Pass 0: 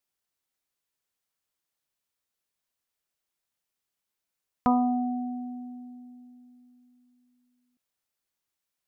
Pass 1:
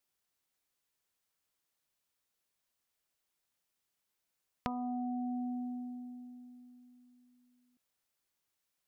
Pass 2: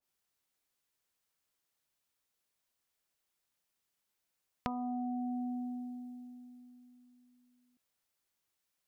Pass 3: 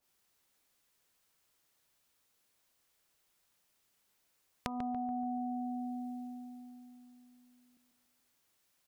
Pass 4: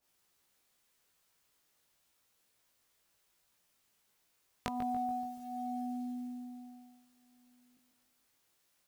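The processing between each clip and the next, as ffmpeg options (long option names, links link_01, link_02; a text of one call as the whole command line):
ffmpeg -i in.wav -af "acompressor=threshold=-36dB:ratio=12,volume=1dB" out.wav
ffmpeg -i in.wav -af "adynamicequalizer=threshold=0.001:dfrequency=2000:dqfactor=0.7:tfrequency=2000:tqfactor=0.7:attack=5:release=100:ratio=0.375:range=2:mode=boostabove:tftype=highshelf" out.wav
ffmpeg -i in.wav -filter_complex "[0:a]acompressor=threshold=-44dB:ratio=6,asplit=2[link_01][link_02];[link_02]adelay=143,lowpass=frequency=1500:poles=1,volume=-7dB,asplit=2[link_03][link_04];[link_04]adelay=143,lowpass=frequency=1500:poles=1,volume=0.54,asplit=2[link_05][link_06];[link_06]adelay=143,lowpass=frequency=1500:poles=1,volume=0.54,asplit=2[link_07][link_08];[link_08]adelay=143,lowpass=frequency=1500:poles=1,volume=0.54,asplit=2[link_09][link_10];[link_10]adelay=143,lowpass=frequency=1500:poles=1,volume=0.54,asplit=2[link_11][link_12];[link_12]adelay=143,lowpass=frequency=1500:poles=1,volume=0.54,asplit=2[link_13][link_14];[link_14]adelay=143,lowpass=frequency=1500:poles=1,volume=0.54[link_15];[link_01][link_03][link_05][link_07][link_09][link_11][link_13][link_15]amix=inputs=8:normalize=0,volume=8dB" out.wav
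ffmpeg -i in.wav -af "acrusher=bits=7:mode=log:mix=0:aa=0.000001,flanger=delay=17:depth=2.1:speed=0.32,volume=4dB" out.wav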